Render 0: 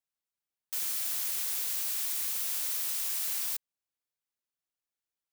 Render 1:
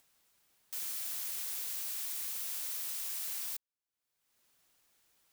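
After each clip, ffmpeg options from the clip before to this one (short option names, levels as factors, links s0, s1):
-af "acompressor=mode=upward:threshold=0.00631:ratio=2.5,volume=0.501"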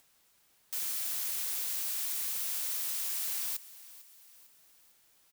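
-af "aecho=1:1:450|900|1350|1800:0.126|0.0629|0.0315|0.0157,volume=1.58"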